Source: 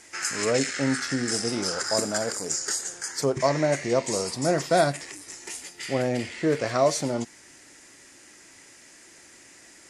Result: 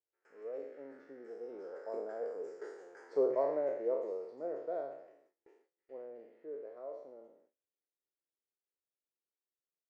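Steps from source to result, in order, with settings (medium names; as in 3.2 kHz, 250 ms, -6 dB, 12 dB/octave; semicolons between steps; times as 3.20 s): spectral sustain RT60 0.79 s; Doppler pass-by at 3.00 s, 9 m/s, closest 4.2 m; ladder band-pass 500 Hz, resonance 60%; gate with hold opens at -58 dBFS; trim +1 dB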